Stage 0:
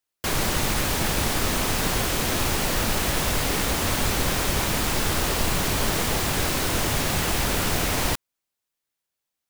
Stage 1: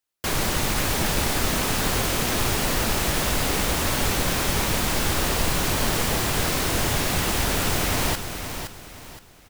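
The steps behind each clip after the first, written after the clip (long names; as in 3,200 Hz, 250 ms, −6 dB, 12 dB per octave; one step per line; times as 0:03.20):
repeating echo 518 ms, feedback 33%, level −8.5 dB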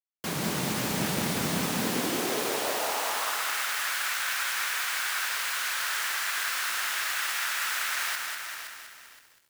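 high-pass filter sweep 170 Hz → 1,500 Hz, 0:01.62–0:03.52
dead-zone distortion −48 dBFS
feedback echo at a low word length 195 ms, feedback 55%, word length 8 bits, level −4.5 dB
level −7 dB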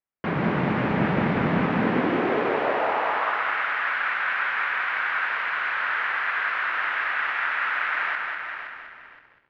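low-pass filter 2,200 Hz 24 dB per octave
level +7.5 dB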